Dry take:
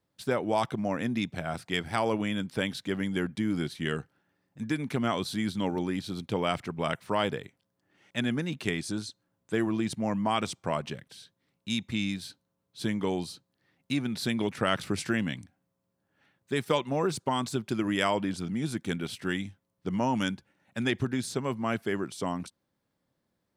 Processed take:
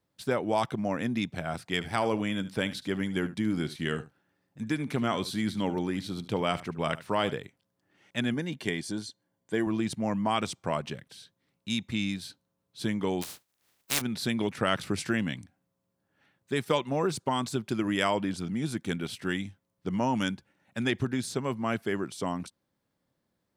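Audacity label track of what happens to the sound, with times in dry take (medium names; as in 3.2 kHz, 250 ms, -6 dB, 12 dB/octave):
1.740000	7.340000	delay 74 ms -16 dB
8.340000	9.670000	comb of notches 1.3 kHz
13.210000	14.000000	spectral contrast reduction exponent 0.19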